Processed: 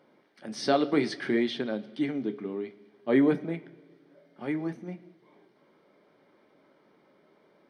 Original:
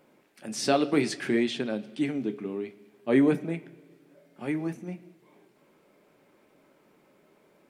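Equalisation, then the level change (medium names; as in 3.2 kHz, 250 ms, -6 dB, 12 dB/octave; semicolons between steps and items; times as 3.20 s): Savitzky-Golay filter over 15 samples; bass shelf 80 Hz -12 dB; band-stop 2.6 kHz, Q 5.4; 0.0 dB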